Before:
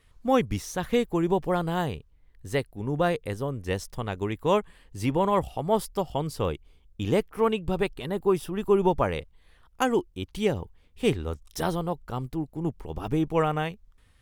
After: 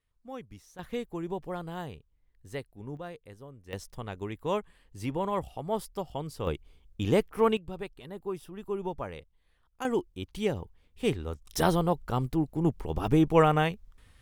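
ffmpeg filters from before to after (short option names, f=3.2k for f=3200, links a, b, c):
-af "asetnsamples=n=441:p=0,asendcmd='0.79 volume volume -10.5dB;2.97 volume volume -17dB;3.73 volume volume -7dB;6.47 volume volume -0.5dB;7.57 volume volume -12dB;9.85 volume volume -4dB;11.47 volume volume 3dB',volume=-19.5dB"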